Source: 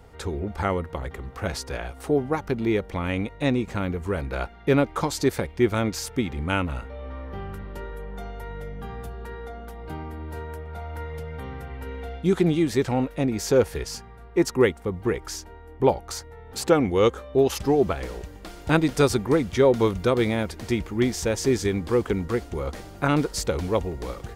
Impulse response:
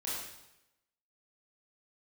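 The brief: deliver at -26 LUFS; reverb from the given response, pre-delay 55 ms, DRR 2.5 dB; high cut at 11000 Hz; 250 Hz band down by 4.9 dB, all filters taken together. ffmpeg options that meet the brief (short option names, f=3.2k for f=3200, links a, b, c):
-filter_complex "[0:a]lowpass=11k,equalizer=f=250:t=o:g=-7,asplit=2[a][b];[1:a]atrim=start_sample=2205,adelay=55[c];[b][c]afir=irnorm=-1:irlink=0,volume=-5.5dB[d];[a][d]amix=inputs=2:normalize=0,volume=-0.5dB"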